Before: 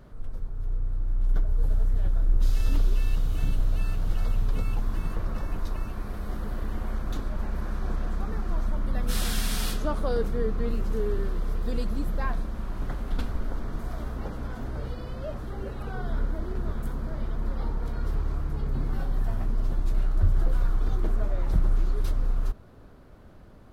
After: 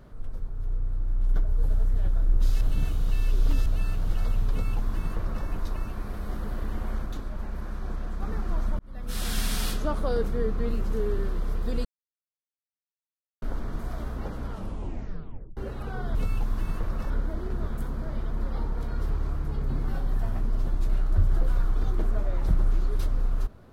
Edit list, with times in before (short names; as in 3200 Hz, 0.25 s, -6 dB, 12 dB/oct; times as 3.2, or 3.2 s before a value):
2.61–3.66 reverse
4.51–5.46 copy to 16.15
7.06–8.22 gain -3.5 dB
8.79–9.4 fade in
11.85–13.42 mute
14.43 tape stop 1.14 s